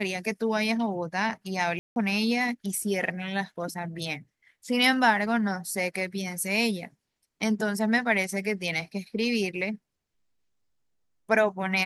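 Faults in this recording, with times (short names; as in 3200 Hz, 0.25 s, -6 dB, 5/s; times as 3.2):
1.79–1.96 gap 0.171 s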